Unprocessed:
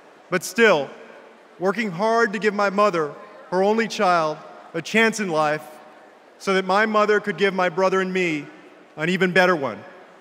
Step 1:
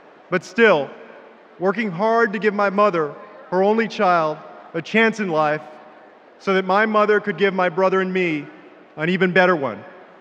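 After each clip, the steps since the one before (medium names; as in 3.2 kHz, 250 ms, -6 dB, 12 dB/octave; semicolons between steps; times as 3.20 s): distance through air 170 m; trim +2.5 dB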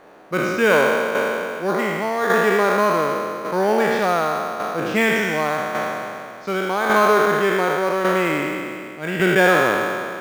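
spectral sustain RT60 2.91 s; in parallel at -9.5 dB: sample-rate reducer 5.2 kHz, jitter 0%; on the sum: tremolo saw down 0.87 Hz, depth 50%; trim -5 dB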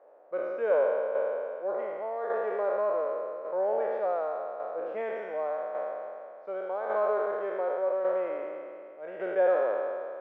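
ladder band-pass 610 Hz, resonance 65%; trim -2.5 dB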